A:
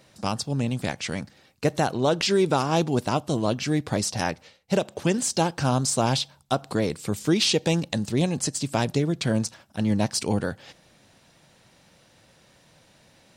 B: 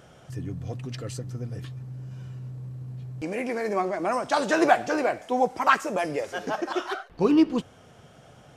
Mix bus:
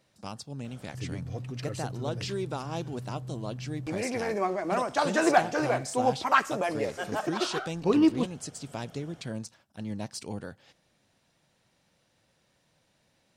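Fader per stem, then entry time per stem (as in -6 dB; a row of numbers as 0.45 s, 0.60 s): -12.5 dB, -2.5 dB; 0.00 s, 0.65 s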